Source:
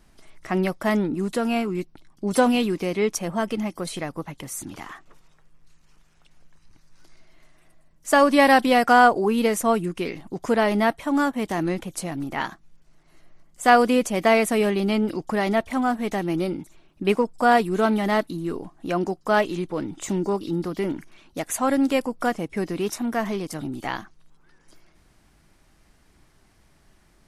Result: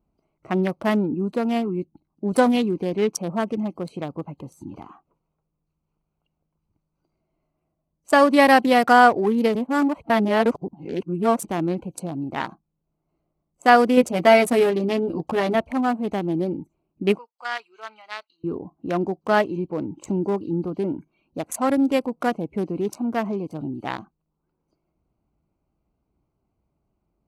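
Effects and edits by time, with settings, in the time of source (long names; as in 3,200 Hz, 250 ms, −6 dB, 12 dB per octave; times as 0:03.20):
0:09.55–0:11.45: reverse
0:13.96–0:15.55: double-tracking delay 12 ms −3 dB
0:17.18–0:18.44: flat-topped band-pass 3,200 Hz, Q 0.7
whole clip: adaptive Wiener filter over 25 samples; noise reduction from a noise print of the clip's start 13 dB; high-pass filter 44 Hz; level +1.5 dB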